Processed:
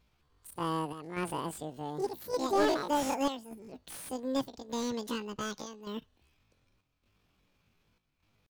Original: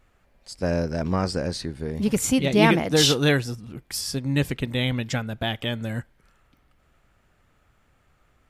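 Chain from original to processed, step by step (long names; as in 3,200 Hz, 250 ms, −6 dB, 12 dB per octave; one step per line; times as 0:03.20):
square-wave tremolo 0.85 Hz, depth 65%, duty 80%
pitch shifter +11 semitones
slew-rate limiting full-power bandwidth 180 Hz
level −9 dB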